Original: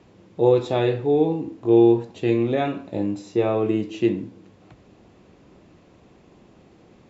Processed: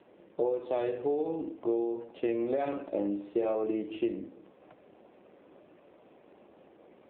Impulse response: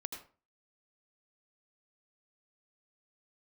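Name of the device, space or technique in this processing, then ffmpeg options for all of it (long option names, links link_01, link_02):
voicemail: -filter_complex "[0:a]asettb=1/sr,asplit=3[link_01][link_02][link_03];[link_01]atrim=end=0.724[link_04];[link_02]atrim=start=0.72:end=1.68,asetpts=PTS-STARTPTS,afade=type=in:duration=0.004:curve=qsin,afade=type=out:start_time=0.956:duration=0.004:curve=qsin,highshelf=frequency=3100:gain=5.5[link_05];[link_03]atrim=start=1.676[link_06];[link_04][link_05]acrossfade=duration=0.004:curve1=hsin:curve2=qsin[link_07];[link_07][link_06]acrossfade=duration=0.004:curve1=qsin:curve2=hsin,asettb=1/sr,asplit=3[link_08][link_09][link_10];[link_08]atrim=end=2.604[link_11];[link_09]atrim=start=2.6:end=3.55,asetpts=PTS-STARTPTS,afade=type=in:duration=0.004:curve=qsin,afade=type=out:start_time=0.946:duration=0.004:curve=qsin,asplit=2[link_12][link_13];[link_13]adelay=49,volume=-6dB[link_14];[link_12][link_14]amix=inputs=2:normalize=0,atrim=end_sample=41895[link_15];[link_10]atrim=start=3.546[link_16];[link_11][link_15]acrossfade=duration=0.004:curve1=hsin:curve2=qsin[link_17];[link_17][link_16]acrossfade=duration=0.004:curve1=qsin:curve2=hsin,highpass=320,lowpass=3200,equalizer=frequency=580:width_type=o:width=0.37:gain=5.5,acompressor=threshold=-24dB:ratio=10,volume=-1.5dB" -ar 8000 -c:a libopencore_amrnb -b:a 7400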